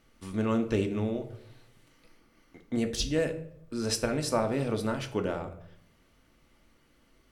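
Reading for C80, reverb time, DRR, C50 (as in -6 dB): 15.5 dB, 0.70 s, 5.0 dB, 12.0 dB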